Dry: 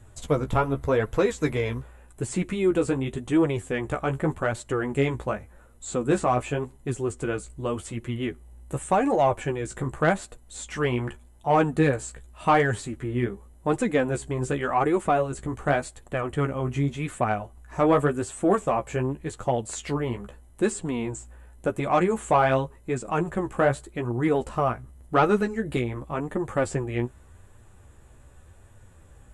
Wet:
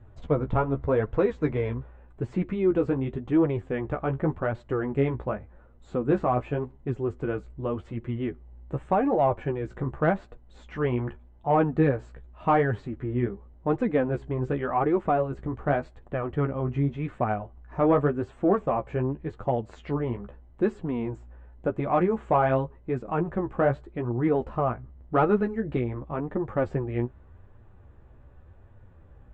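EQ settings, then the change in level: LPF 1300 Hz 6 dB/oct; air absorption 170 m; 0.0 dB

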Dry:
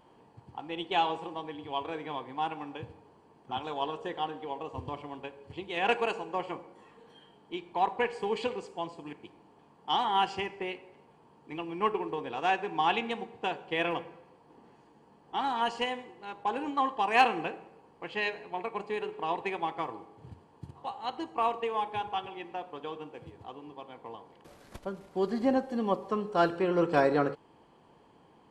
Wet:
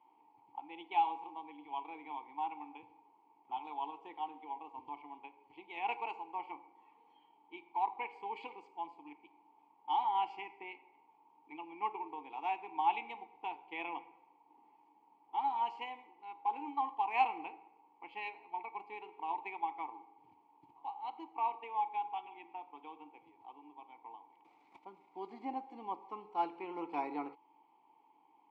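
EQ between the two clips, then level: vowel filter u; HPF 87 Hz; resonant low shelf 410 Hz -12 dB, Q 1.5; +4.5 dB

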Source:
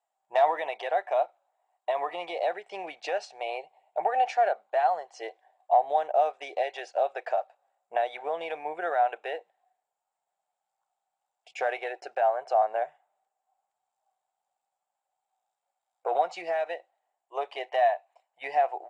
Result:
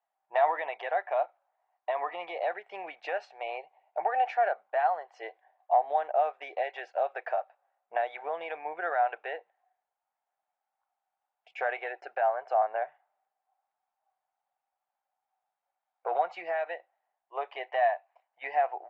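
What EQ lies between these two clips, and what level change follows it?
band-pass 1800 Hz, Q 1.1; tilt -3.5 dB/oct; +4.0 dB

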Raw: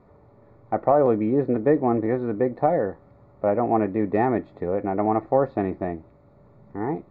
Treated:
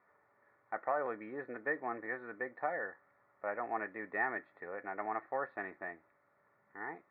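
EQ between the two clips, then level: band-pass 1700 Hz, Q 4.3; air absorption 93 m; +3.5 dB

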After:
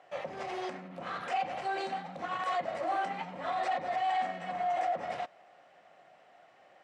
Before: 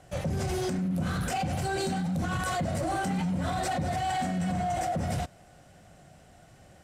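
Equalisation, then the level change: BPF 650–2400 Hz; notch 1500 Hz, Q 9.5; +2.0 dB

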